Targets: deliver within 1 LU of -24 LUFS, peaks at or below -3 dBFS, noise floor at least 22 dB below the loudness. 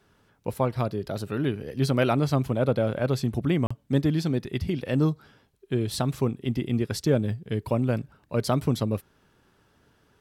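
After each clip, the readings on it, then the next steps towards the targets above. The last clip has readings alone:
dropouts 1; longest dropout 35 ms; loudness -27.0 LUFS; peak -11.0 dBFS; loudness target -24.0 LUFS
-> interpolate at 3.67, 35 ms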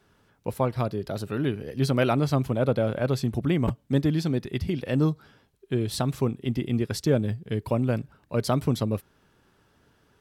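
dropouts 0; loudness -27.0 LUFS; peak -11.0 dBFS; loudness target -24.0 LUFS
-> gain +3 dB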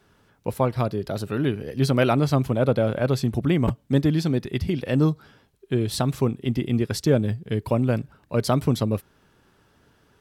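loudness -24.0 LUFS; peak -8.0 dBFS; noise floor -62 dBFS

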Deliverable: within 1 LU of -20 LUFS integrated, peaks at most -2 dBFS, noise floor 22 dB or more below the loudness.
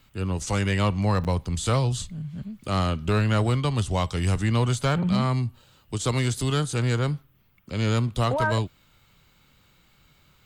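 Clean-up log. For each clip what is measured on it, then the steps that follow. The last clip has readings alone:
clipped 0.4%; flat tops at -15.5 dBFS; dropouts 1; longest dropout 8.3 ms; loudness -25.5 LUFS; peak -15.5 dBFS; loudness target -20.0 LUFS
-> clip repair -15.5 dBFS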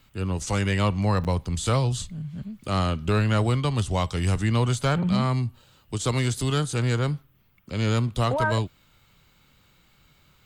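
clipped 0.0%; dropouts 1; longest dropout 8.3 ms
-> interpolate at 1.24, 8.3 ms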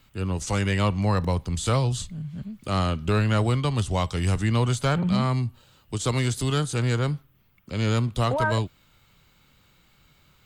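dropouts 0; loudness -25.5 LUFS; peak -10.5 dBFS; loudness target -20.0 LUFS
-> gain +5.5 dB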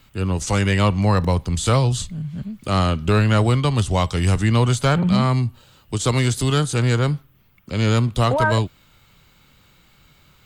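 loudness -20.0 LUFS; peak -5.0 dBFS; noise floor -55 dBFS

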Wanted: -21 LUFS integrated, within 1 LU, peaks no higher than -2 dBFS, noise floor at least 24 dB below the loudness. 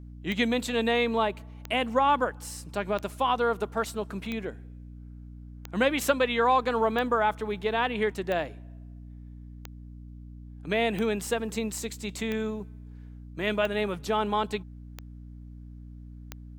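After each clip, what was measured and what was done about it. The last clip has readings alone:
clicks 13; hum 60 Hz; harmonics up to 300 Hz; hum level -41 dBFS; loudness -28.0 LUFS; peak -10.0 dBFS; loudness target -21.0 LUFS
-> de-click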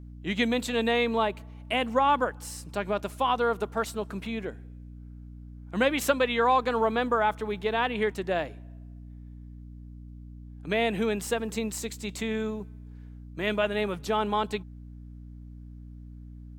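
clicks 0; hum 60 Hz; harmonics up to 300 Hz; hum level -41 dBFS
-> notches 60/120/180/240/300 Hz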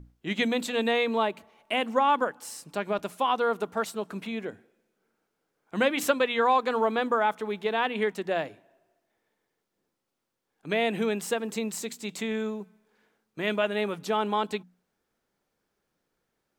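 hum none; loudness -28.0 LUFS; peak -9.5 dBFS; loudness target -21.0 LUFS
-> gain +7 dB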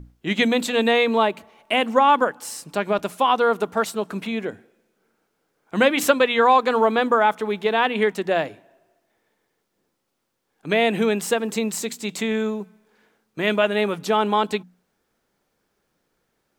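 loudness -21.0 LUFS; peak -2.5 dBFS; noise floor -74 dBFS

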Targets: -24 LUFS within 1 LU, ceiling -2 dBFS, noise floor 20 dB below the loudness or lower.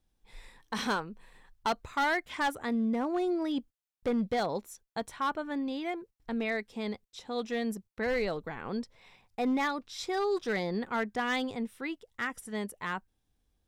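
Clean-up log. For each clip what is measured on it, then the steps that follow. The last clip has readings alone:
clipped 1.1%; flat tops at -24.0 dBFS; loudness -33.0 LUFS; peak -24.0 dBFS; loudness target -24.0 LUFS
-> clip repair -24 dBFS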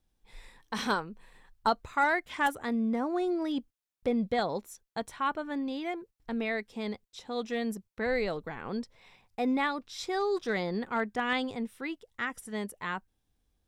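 clipped 0.0%; loudness -32.5 LUFS; peak -15.0 dBFS; loudness target -24.0 LUFS
-> gain +8.5 dB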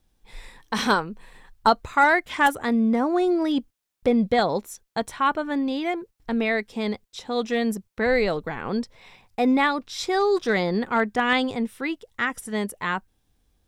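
loudness -24.0 LUFS; peak -6.5 dBFS; noise floor -70 dBFS

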